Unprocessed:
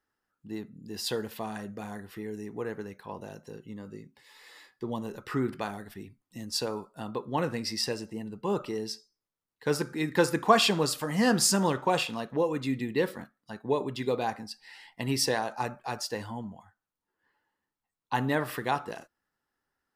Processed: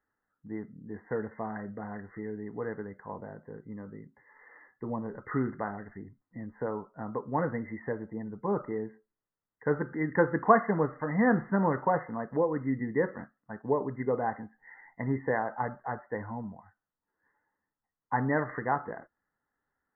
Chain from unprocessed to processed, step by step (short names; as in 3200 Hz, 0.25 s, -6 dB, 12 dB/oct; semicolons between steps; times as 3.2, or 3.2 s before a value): brick-wall FIR low-pass 2100 Hz; notch 360 Hz, Q 12